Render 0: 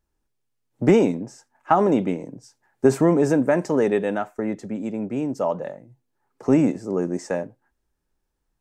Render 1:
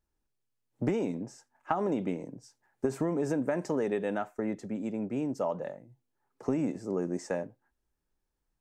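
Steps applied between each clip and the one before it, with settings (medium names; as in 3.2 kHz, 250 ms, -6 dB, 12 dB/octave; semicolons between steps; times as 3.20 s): compression 12:1, threshold -19 dBFS, peak gain reduction 10 dB; trim -6 dB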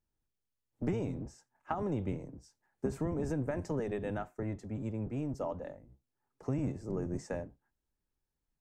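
octave divider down 1 oct, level +1 dB; trim -6 dB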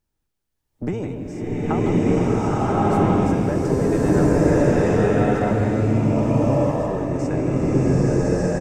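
speakerphone echo 160 ms, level -6 dB; swelling reverb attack 1260 ms, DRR -10.5 dB; trim +7.5 dB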